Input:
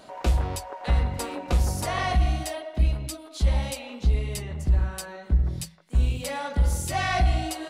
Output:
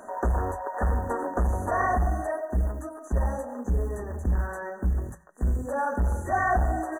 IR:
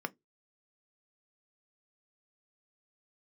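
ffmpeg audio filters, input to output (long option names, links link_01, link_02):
-filter_complex "[0:a]equalizer=frequency=140:width=3:gain=-13.5,asplit=2[link_01][link_02];[link_02]aeval=exprs='0.237*sin(PI/2*2*val(0)/0.237)':channel_layout=same,volume=-4dB[link_03];[link_01][link_03]amix=inputs=2:normalize=0,acrusher=bits=8:mode=log:mix=0:aa=0.000001,asplit=2[link_04][link_05];[1:a]atrim=start_sample=2205[link_06];[link_05][link_06]afir=irnorm=-1:irlink=0,volume=-7dB[link_07];[link_04][link_07]amix=inputs=2:normalize=0,afftfilt=real='re*(1-between(b*sr/4096,1900,5900))':imag='im*(1-between(b*sr/4096,1900,5900))':win_size=4096:overlap=0.75,atempo=1.1,acrossover=split=3000[link_08][link_09];[link_09]acompressor=threshold=-42dB:ratio=4:attack=1:release=60[link_10];[link_08][link_10]amix=inputs=2:normalize=0,volume=-8.5dB"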